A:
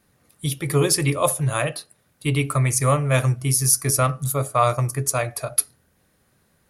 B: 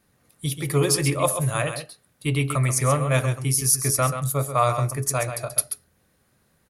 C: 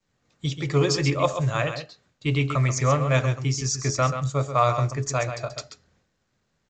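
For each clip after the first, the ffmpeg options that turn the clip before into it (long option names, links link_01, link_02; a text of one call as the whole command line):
ffmpeg -i in.wav -af "aecho=1:1:133:0.355,volume=-2dB" out.wav
ffmpeg -i in.wav -af "agate=range=-33dB:threshold=-56dB:ratio=3:detection=peak" -ar 16000 -c:a pcm_mulaw out.wav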